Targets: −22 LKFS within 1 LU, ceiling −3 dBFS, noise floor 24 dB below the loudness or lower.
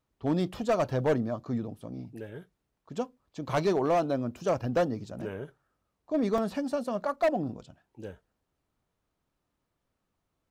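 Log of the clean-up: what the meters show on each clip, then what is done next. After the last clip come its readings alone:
share of clipped samples 1.0%; peaks flattened at −20.0 dBFS; number of dropouts 1; longest dropout 1.4 ms; integrated loudness −30.0 LKFS; sample peak −20.0 dBFS; target loudness −22.0 LKFS
→ clipped peaks rebuilt −20 dBFS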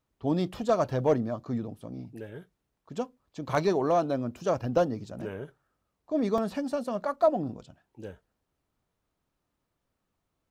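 share of clipped samples 0.0%; number of dropouts 1; longest dropout 1.4 ms
→ repair the gap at 0:06.38, 1.4 ms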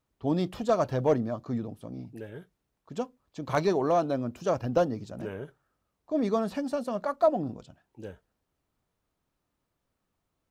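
number of dropouts 0; integrated loudness −29.0 LKFS; sample peak −12.0 dBFS; target loudness −22.0 LKFS
→ level +7 dB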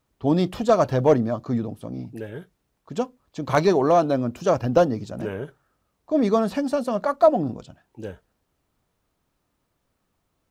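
integrated loudness −22.0 LKFS; sample peak −5.0 dBFS; background noise floor −74 dBFS

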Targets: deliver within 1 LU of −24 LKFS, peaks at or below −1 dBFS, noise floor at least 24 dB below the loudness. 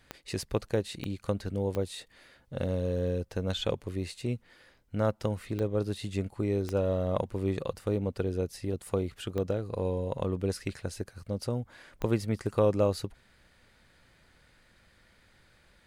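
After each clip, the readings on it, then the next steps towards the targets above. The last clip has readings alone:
number of clicks 7; integrated loudness −32.5 LKFS; sample peak −13.5 dBFS; target loudness −24.0 LKFS
→ click removal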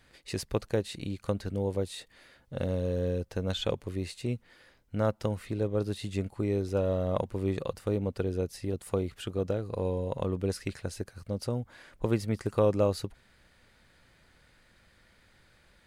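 number of clicks 0; integrated loudness −32.5 LKFS; sample peak −13.5 dBFS; target loudness −24.0 LKFS
→ level +8.5 dB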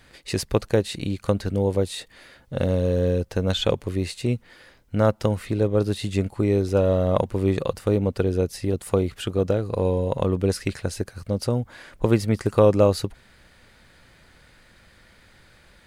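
integrated loudness −24.0 LKFS; sample peak −5.0 dBFS; background noise floor −55 dBFS

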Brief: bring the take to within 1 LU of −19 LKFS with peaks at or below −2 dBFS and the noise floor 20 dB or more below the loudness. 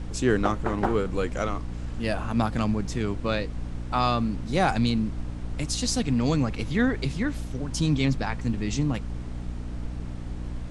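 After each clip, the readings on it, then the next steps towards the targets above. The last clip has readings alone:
mains hum 60 Hz; hum harmonics up to 300 Hz; level of the hum −32 dBFS; background noise floor −35 dBFS; target noise floor −48 dBFS; integrated loudness −27.5 LKFS; sample peak −9.0 dBFS; target loudness −19.0 LKFS
→ hum removal 60 Hz, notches 5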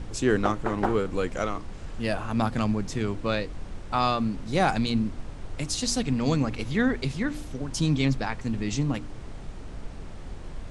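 mains hum none found; background noise floor −39 dBFS; target noise floor −48 dBFS
→ noise reduction from a noise print 9 dB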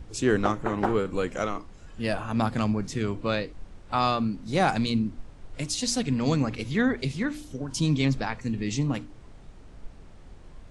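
background noise floor −47 dBFS; target noise floor −48 dBFS
→ noise reduction from a noise print 6 dB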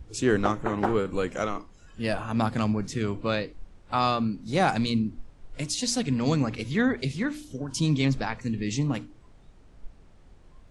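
background noise floor −53 dBFS; integrated loudness −27.5 LKFS; sample peak −9.0 dBFS; target loudness −19.0 LKFS
→ level +8.5 dB
brickwall limiter −2 dBFS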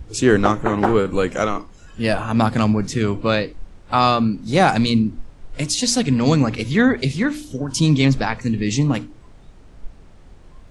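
integrated loudness −19.0 LKFS; sample peak −2.0 dBFS; background noise floor −44 dBFS

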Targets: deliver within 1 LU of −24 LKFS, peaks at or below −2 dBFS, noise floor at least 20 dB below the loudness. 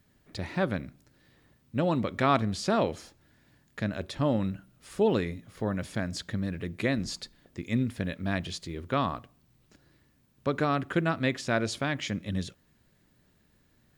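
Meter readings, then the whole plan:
integrated loudness −30.5 LKFS; sample peak −12.0 dBFS; target loudness −24.0 LKFS
→ level +6.5 dB

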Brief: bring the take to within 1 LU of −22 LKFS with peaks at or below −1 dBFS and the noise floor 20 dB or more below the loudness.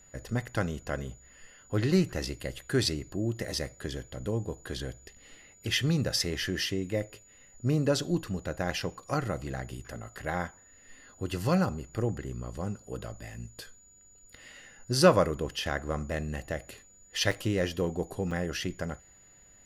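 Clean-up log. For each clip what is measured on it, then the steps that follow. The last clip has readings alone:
number of dropouts 2; longest dropout 4.7 ms; interfering tone 6,900 Hz; level of the tone −56 dBFS; integrated loudness −31.0 LKFS; sample peak −7.0 dBFS; target loudness −22.0 LKFS
→ repair the gap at 0:17.31/0:18.31, 4.7 ms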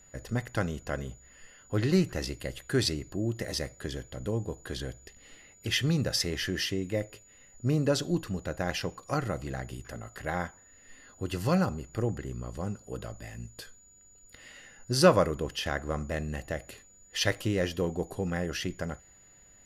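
number of dropouts 0; interfering tone 6,900 Hz; level of the tone −56 dBFS
→ notch filter 6,900 Hz, Q 30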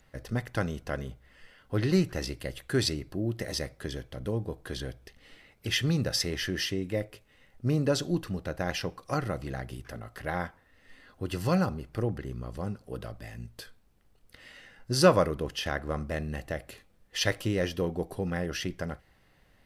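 interfering tone none found; integrated loudness −31.0 LKFS; sample peak −7.0 dBFS; target loudness −22.0 LKFS
→ level +9 dB
brickwall limiter −1 dBFS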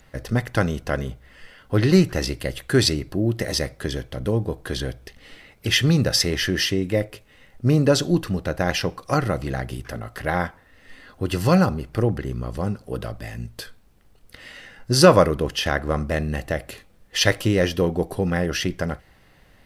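integrated loudness −22.5 LKFS; sample peak −1.0 dBFS; background noise floor −55 dBFS

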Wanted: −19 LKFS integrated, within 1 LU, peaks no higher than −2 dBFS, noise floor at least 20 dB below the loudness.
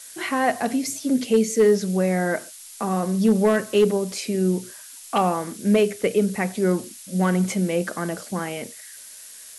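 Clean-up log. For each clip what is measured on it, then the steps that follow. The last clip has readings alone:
share of clipped samples 0.4%; peaks flattened at −10.0 dBFS; background noise floor −42 dBFS; target noise floor −43 dBFS; integrated loudness −22.5 LKFS; sample peak −10.0 dBFS; target loudness −19.0 LKFS
→ clipped peaks rebuilt −10 dBFS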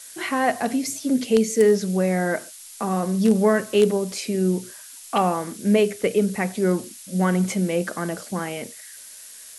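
share of clipped samples 0.0%; background noise floor −42 dBFS; target noise floor −43 dBFS
→ broadband denoise 6 dB, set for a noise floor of −42 dBFS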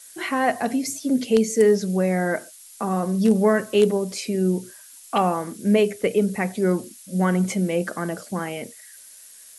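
background noise floor −46 dBFS; integrated loudness −22.5 LKFS; sample peak −2.0 dBFS; target loudness −19.0 LKFS
→ level +3.5 dB
brickwall limiter −2 dBFS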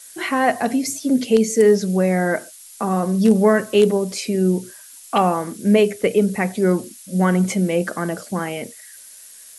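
integrated loudness −19.0 LKFS; sample peak −2.0 dBFS; background noise floor −43 dBFS

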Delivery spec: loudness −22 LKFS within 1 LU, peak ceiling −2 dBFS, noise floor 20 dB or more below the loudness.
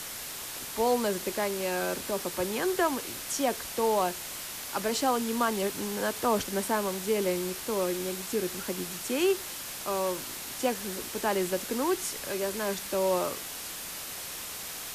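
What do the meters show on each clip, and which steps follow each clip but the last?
background noise floor −39 dBFS; target noise floor −51 dBFS; integrated loudness −30.5 LKFS; sample peak −15.0 dBFS; target loudness −22.0 LKFS
→ broadband denoise 12 dB, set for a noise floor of −39 dBFS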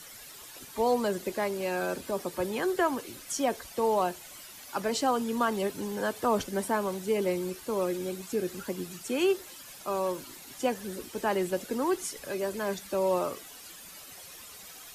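background noise floor −48 dBFS; target noise floor −51 dBFS
→ broadband denoise 6 dB, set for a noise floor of −48 dBFS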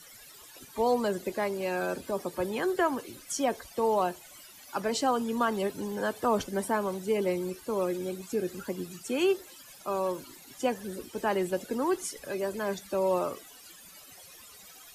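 background noise floor −51 dBFS; integrated loudness −31.0 LKFS; sample peak −16.0 dBFS; target loudness −22.0 LKFS
→ level +9 dB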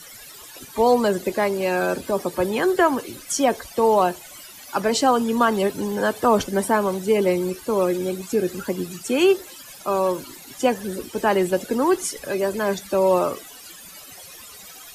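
integrated loudness −22.0 LKFS; sample peak −7.0 dBFS; background noise floor −42 dBFS

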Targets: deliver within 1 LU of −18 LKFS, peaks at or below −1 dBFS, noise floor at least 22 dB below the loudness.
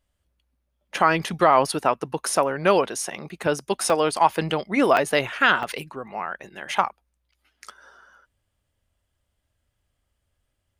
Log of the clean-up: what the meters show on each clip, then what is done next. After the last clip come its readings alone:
number of dropouts 4; longest dropout 1.3 ms; integrated loudness −22.5 LKFS; sample peak −4.0 dBFS; target loudness −18.0 LKFS
→ repair the gap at 0:03.90/0:04.97/0:05.63/0:06.71, 1.3 ms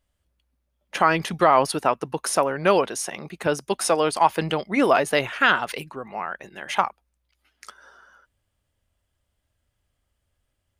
number of dropouts 0; integrated loudness −22.5 LKFS; sample peak −4.0 dBFS; target loudness −18.0 LKFS
→ level +4.5 dB
brickwall limiter −1 dBFS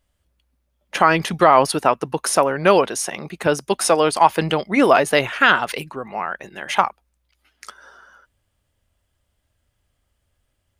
integrated loudness −18.0 LKFS; sample peak −1.0 dBFS; background noise floor −72 dBFS

